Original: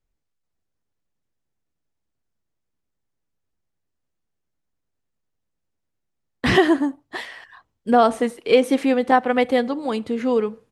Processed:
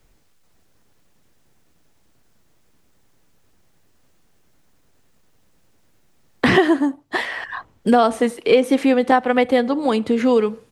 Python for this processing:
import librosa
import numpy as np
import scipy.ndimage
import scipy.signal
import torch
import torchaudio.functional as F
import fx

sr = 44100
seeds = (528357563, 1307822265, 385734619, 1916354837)

y = fx.band_squash(x, sr, depth_pct=70)
y = y * librosa.db_to_amplitude(2.0)